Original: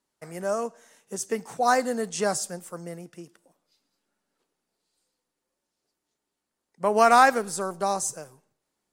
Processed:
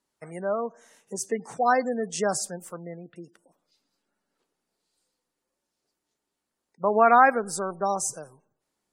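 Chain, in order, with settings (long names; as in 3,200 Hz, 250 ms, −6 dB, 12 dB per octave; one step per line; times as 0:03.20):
gate on every frequency bin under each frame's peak −25 dB strong
0:02.74–0:03.16: elliptic low-pass filter 3,900 Hz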